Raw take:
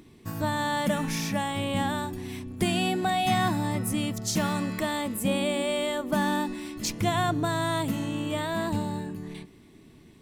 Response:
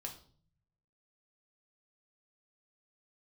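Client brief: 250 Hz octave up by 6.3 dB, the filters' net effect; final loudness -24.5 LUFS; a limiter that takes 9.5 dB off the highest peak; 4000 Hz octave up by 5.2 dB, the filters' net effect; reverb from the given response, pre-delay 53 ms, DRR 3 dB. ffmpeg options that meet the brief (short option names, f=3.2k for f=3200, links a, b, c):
-filter_complex "[0:a]equalizer=f=250:t=o:g=8,equalizer=f=4k:t=o:g=6.5,alimiter=limit=-16.5dB:level=0:latency=1,asplit=2[a][b];[1:a]atrim=start_sample=2205,adelay=53[c];[b][c]afir=irnorm=-1:irlink=0,volume=-0.5dB[d];[a][d]amix=inputs=2:normalize=0"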